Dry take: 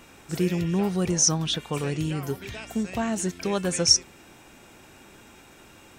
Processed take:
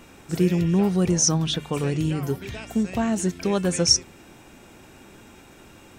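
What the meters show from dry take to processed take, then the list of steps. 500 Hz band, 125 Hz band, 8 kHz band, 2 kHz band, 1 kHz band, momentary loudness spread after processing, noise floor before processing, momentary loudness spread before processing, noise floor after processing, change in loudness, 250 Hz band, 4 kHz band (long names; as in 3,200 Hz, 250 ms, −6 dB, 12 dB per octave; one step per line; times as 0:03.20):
+3.0 dB, +4.5 dB, 0.0 dB, +0.5 dB, +1.5 dB, 9 LU, −52 dBFS, 12 LU, −49 dBFS, +2.0 dB, +4.5 dB, 0.0 dB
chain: low-shelf EQ 490 Hz +5.5 dB
mains-hum notches 50/100/150 Hz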